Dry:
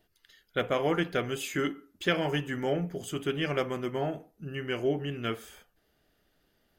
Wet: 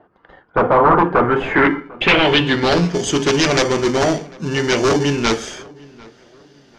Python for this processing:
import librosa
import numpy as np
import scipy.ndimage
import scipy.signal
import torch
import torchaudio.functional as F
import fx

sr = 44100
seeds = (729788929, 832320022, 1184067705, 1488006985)

p1 = scipy.signal.sosfilt(scipy.signal.butter(2, 170.0, 'highpass', fs=sr, output='sos'), x)
p2 = fx.high_shelf(p1, sr, hz=7600.0, db=-8.0)
p3 = fx.hum_notches(p2, sr, base_hz=50, count=8)
p4 = fx.sample_hold(p3, sr, seeds[0], rate_hz=1300.0, jitter_pct=0)
p5 = p3 + (p4 * 10.0 ** (-7.0 / 20.0))
p6 = fx.fold_sine(p5, sr, drive_db=15, ceiling_db=-10.0)
p7 = fx.filter_sweep_lowpass(p6, sr, from_hz=1100.0, to_hz=6000.0, start_s=1.12, end_s=2.99, q=3.2)
p8 = p7 + fx.echo_filtered(p7, sr, ms=747, feedback_pct=36, hz=2300.0, wet_db=-23, dry=0)
y = p8 * 10.0 ** (-1.0 / 20.0)